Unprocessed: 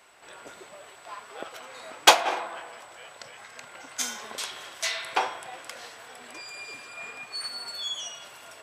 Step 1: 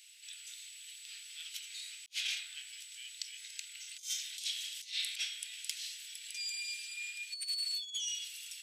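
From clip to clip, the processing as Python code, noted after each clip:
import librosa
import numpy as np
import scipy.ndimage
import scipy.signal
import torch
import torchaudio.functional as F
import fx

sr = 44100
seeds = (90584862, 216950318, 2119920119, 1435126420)

y = scipy.signal.sosfilt(scipy.signal.cheby2(4, 50, 1100.0, 'highpass', fs=sr, output='sos'), x)
y = fx.over_compress(y, sr, threshold_db=-39.0, ratio=-0.5)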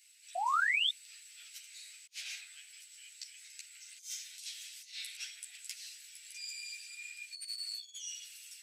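y = fx.peak_eq(x, sr, hz=3300.0, db=-8.5, octaves=0.5)
y = fx.spec_paint(y, sr, seeds[0], shape='rise', start_s=0.35, length_s=0.55, low_hz=680.0, high_hz=3700.0, level_db=-27.0)
y = fx.chorus_voices(y, sr, voices=6, hz=1.5, base_ms=12, depth_ms=3.0, mix_pct=50)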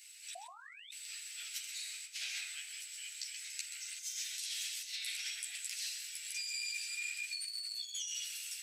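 y = fx.over_compress(x, sr, threshold_db=-46.0, ratio=-1.0)
y = y + 10.0 ** (-9.5 / 20.0) * np.pad(y, (int(130 * sr / 1000.0), 0))[:len(y)]
y = y * librosa.db_to_amplitude(2.5)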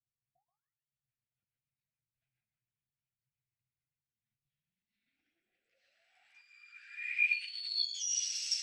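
y = fx.filter_sweep_lowpass(x, sr, from_hz=130.0, to_hz=5500.0, start_s=4.47, end_s=8.07, q=7.9)
y = fx.rotary_switch(y, sr, hz=7.0, then_hz=0.8, switch_at_s=3.99)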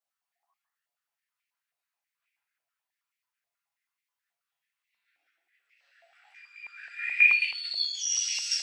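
y = fx.room_shoebox(x, sr, seeds[1], volume_m3=48.0, walls='mixed', distance_m=0.69)
y = fx.filter_held_highpass(y, sr, hz=9.3, low_hz=680.0, high_hz=2200.0)
y = y * librosa.db_to_amplitude(2.0)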